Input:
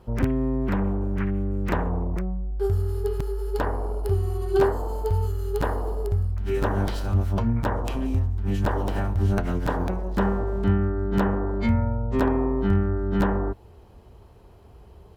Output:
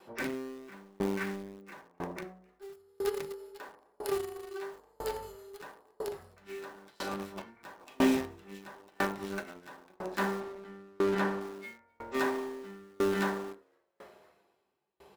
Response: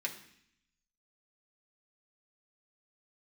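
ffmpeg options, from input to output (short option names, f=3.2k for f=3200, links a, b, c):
-filter_complex "[0:a]highpass=f=600:p=1,acrossover=split=950[a][b];[a]asoftclip=type=tanh:threshold=-27.5dB[c];[c][b]amix=inputs=2:normalize=0,asettb=1/sr,asplit=3[d][e][f];[d]atrim=end=7.804[g];[e]atrim=start=7.8:end=8.34,asetpts=PTS-STARTPTS,afade=t=in:d=0.004:c=qsin,afade=t=out:st=0.536:d=0.004:c=qsin,acontrast=83[h];[f]atrim=start=8.336[i];[g][h]acrossfade=d=0.004:c1=hsin:c2=qsin[j];[j][i]acrossfade=d=0.004:c1=qsin:c2=hsin[k];[1:a]atrim=start_sample=2205,afade=t=out:st=0.16:d=0.01,atrim=end_sample=7497[l];[k][l]afir=irnorm=-1:irlink=0,asettb=1/sr,asplit=3[m][n][o];[m]atrim=end=4.754[p];[n]atrim=start=4.75:end=5.36,asetpts=PTS-STARTPTS,afade=t=in:d=0.004:c=qsin,afade=t=out:st=0.606:d=0.004:c=qsin,aeval=exprs='val(0)+0.00251*(sin(2*PI*50*n/s)+sin(2*PI*2*50*n/s)/2+sin(2*PI*3*50*n/s)/3+sin(2*PI*4*50*n/s)/4+sin(2*PI*5*50*n/s)/5)':c=same[q];[o]atrim=start=5.356[r];[p][q]acrossfade=d=0.004:c1=hsin:c2=qsin[s];[s][r]acrossfade=d=0.004:c1=qsin:c2=hsin,asplit=2[t][u];[u]acrusher=bits=4:mix=0:aa=0.000001,volume=-9dB[v];[t][v]amix=inputs=2:normalize=0,asettb=1/sr,asplit=3[w][x][y];[w]atrim=end=10.404[z];[x]atrim=start=10.4:end=11.41,asetpts=PTS-STARTPTS,afade=t=in:d=0.004:c=qsin,afade=t=out:st=1.006:d=0.004:c=qsin,aemphasis=mode=reproduction:type=cd[aa];[y]atrim=start=11.406[ab];[z][aa]acrossfade=d=0.004:c1=hsin:c2=qsin[ac];[ac][ab]acrossfade=d=0.004:c1=qsin:c2=hsin,asplit=5[ad][ae][af][ag][ah];[ae]adelay=256,afreqshift=76,volume=-23.5dB[ai];[af]adelay=512,afreqshift=152,volume=-28.1dB[aj];[ag]adelay=768,afreqshift=228,volume=-32.7dB[ak];[ah]adelay=1024,afreqshift=304,volume=-37.2dB[al];[ad][ai][aj][ak][al]amix=inputs=5:normalize=0,aeval=exprs='val(0)*pow(10,-34*if(lt(mod(1*n/s,1),2*abs(1)/1000),1-mod(1*n/s,1)/(2*abs(1)/1000),(mod(1*n/s,1)-2*abs(1)/1000)/(1-2*abs(1)/1000))/20)':c=same,volume=4dB"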